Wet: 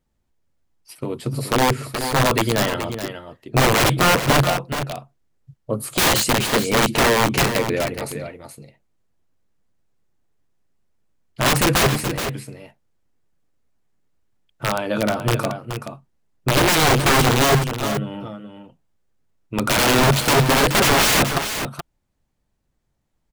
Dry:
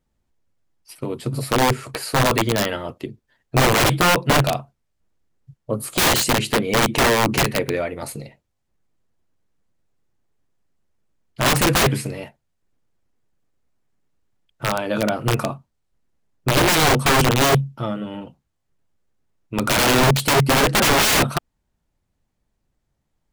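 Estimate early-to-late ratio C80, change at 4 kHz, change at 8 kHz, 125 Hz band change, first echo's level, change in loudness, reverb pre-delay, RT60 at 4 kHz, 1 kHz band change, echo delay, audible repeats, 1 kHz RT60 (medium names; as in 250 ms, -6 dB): no reverb, +0.5 dB, +0.5 dB, +0.5 dB, -9.0 dB, 0.0 dB, no reverb, no reverb, +0.5 dB, 425 ms, 1, no reverb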